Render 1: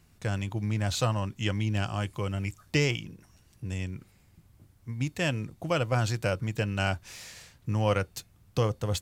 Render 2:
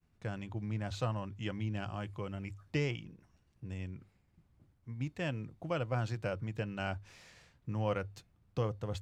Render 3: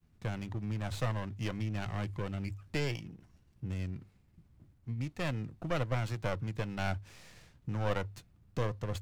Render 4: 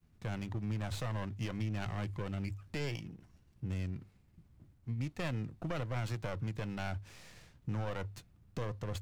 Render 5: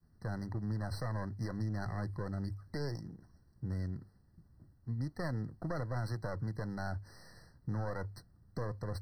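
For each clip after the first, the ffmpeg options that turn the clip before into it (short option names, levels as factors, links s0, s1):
-af "aemphasis=mode=reproduction:type=75kf,agate=range=0.0224:threshold=0.00141:ratio=3:detection=peak,bandreject=f=50:t=h:w=6,bandreject=f=100:t=h:w=6,volume=0.447"
-filter_complex "[0:a]acrossover=split=370[s0][s1];[s0]alimiter=level_in=3.55:limit=0.0631:level=0:latency=1:release=448,volume=0.282[s2];[s1]aeval=exprs='max(val(0),0)':c=same[s3];[s2][s3]amix=inputs=2:normalize=0,volume=2"
-af "alimiter=level_in=1.41:limit=0.0631:level=0:latency=1:release=44,volume=0.708"
-af "afftfilt=real='re*eq(mod(floor(b*sr/1024/2000),2),0)':imag='im*eq(mod(floor(b*sr/1024/2000),2),0)':win_size=1024:overlap=0.75"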